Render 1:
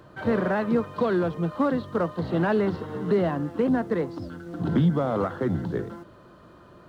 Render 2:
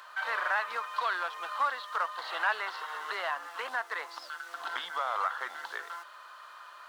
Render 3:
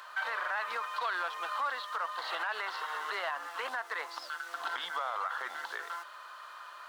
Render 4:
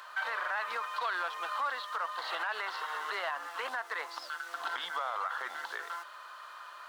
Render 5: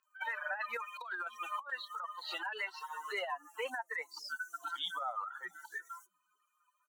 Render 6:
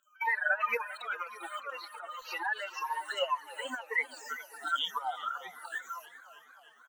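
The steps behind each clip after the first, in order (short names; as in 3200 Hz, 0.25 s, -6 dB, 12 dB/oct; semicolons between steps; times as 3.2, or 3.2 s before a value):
HPF 1000 Hz 24 dB/oct; in parallel at +2.5 dB: compressor, threshold -44 dBFS, peak gain reduction 16 dB; on the sum: gain +1.5 dB
limiter -26.5 dBFS, peak gain reduction 10 dB; gain +1.5 dB
nothing audible
per-bin expansion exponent 3; three bands offset in time mids, highs, lows 30/610 ms, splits 150/4300 Hz; negative-ratio compressor -43 dBFS, ratio -0.5; gain +6 dB
moving spectral ripple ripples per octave 0.84, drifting -1.9 Hz, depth 24 dB; echo 0.396 s -16.5 dB; warbling echo 0.306 s, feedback 78%, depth 111 cents, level -20 dB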